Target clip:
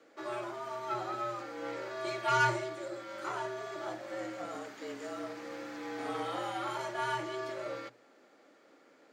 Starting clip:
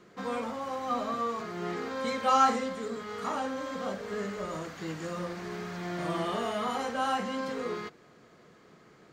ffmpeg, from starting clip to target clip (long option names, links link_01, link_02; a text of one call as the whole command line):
ffmpeg -i in.wav -af "aeval=exprs='0.237*(cos(1*acos(clip(val(0)/0.237,-1,1)))-cos(1*PI/2))+0.0299*(cos(4*acos(clip(val(0)/0.237,-1,1)))-cos(4*PI/2))':channel_layout=same,afreqshift=120,volume=-5dB" out.wav